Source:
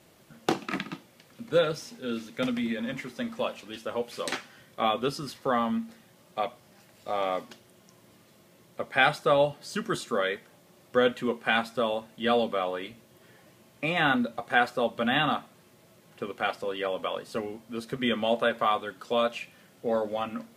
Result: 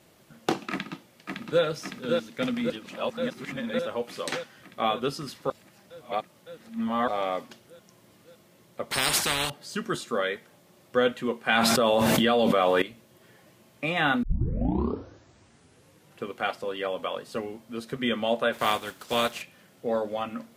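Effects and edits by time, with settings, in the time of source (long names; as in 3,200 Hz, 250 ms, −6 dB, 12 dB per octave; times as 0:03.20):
0:00.71–0:01.63: delay throw 560 ms, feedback 75%, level −4 dB
0:02.70–0:03.79: reverse
0:05.50–0:07.08: reverse
0:08.91–0:09.50: every bin compressed towards the loudest bin 10 to 1
0:11.49–0:12.82: envelope flattener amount 100%
0:14.23: tape start 2.02 s
0:18.52–0:19.41: compressing power law on the bin magnitudes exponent 0.61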